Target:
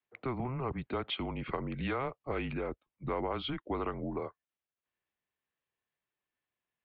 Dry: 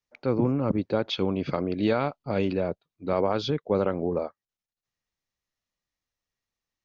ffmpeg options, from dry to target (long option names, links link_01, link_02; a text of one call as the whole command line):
ffmpeg -i in.wav -filter_complex "[0:a]highpass=frequency=210:width_type=q:width=0.5412,highpass=frequency=210:width_type=q:width=1.307,lowpass=frequency=3400:width_type=q:width=0.5176,lowpass=frequency=3400:width_type=q:width=0.7071,lowpass=frequency=3400:width_type=q:width=1.932,afreqshift=-130,acrossover=split=130|690[link_01][link_02][link_03];[link_01]acompressor=threshold=-45dB:ratio=4[link_04];[link_02]acompressor=threshold=-39dB:ratio=4[link_05];[link_03]acompressor=threshold=-33dB:ratio=4[link_06];[link_04][link_05][link_06]amix=inputs=3:normalize=0,asettb=1/sr,asplit=3[link_07][link_08][link_09];[link_07]atrim=end=1.314[link_10];[link_08]atrim=start=1.31:end=3.19,asetpts=PTS-STARTPTS,afade=type=in:duration=0.004:curve=qsin,afade=type=out:start_time=1.876:duration=0.004:curve=qsin,aemphasis=mode=reproduction:type=50fm[link_11];[link_09]atrim=start=3.186[link_12];[link_10][link_11]acrossfade=duration=0.004:curve1=hsin:curve2=qsin[link_13];[link_13][link_12]acrossfade=duration=0.004:curve1=qsin:curve2=hsin" out.wav